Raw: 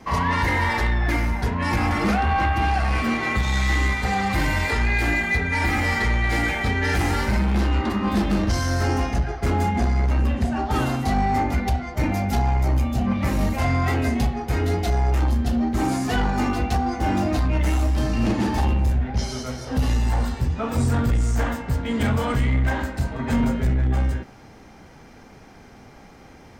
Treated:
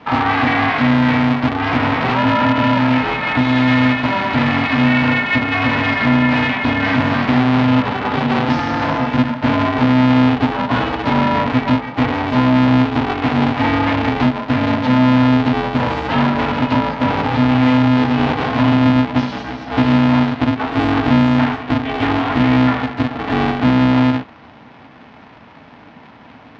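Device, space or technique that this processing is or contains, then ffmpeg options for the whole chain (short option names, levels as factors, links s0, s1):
ring modulator pedal into a guitar cabinet: -filter_complex "[0:a]asettb=1/sr,asplit=3[s0][s1][s2];[s0]atrim=end=8.364[s3];[s1]atrim=start=8.36:end=9.06,asetpts=PTS-STARTPTS,afade=t=in:d=0.004:c=qsin,afade=t=out:st=0.696:d=0.004:c=qsin,aecho=1:1:5.9:0.53,atrim=end_sample=30870[s4];[s2]atrim=start=9.056[s5];[s3][s4]acrossfade=d=0.004:c1=hsin:c2=qsin[s6];[s6][s5]acrossfade=d=0.004:c1=qsin:c2=hsin,aeval=exprs='val(0)*sgn(sin(2*PI*190*n/s))':c=same,highpass=110,equalizer=f=250:t=q:w=4:g=6,equalizer=f=380:t=q:w=4:g=-10,equalizer=f=540:t=q:w=4:g=-5,equalizer=f=820:t=q:w=4:g=4,lowpass=f=3700:w=0.5412,lowpass=f=3700:w=1.3066,volume=1.88"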